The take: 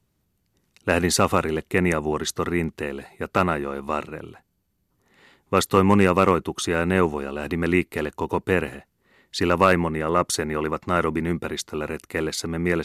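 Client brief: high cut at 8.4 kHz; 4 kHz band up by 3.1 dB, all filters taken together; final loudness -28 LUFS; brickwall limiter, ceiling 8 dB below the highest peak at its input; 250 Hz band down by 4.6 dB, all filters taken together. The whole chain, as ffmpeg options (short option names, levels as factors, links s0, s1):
-af "lowpass=8400,equalizer=f=250:t=o:g=-7,equalizer=f=4000:t=o:g=4,volume=0.944,alimiter=limit=0.237:level=0:latency=1"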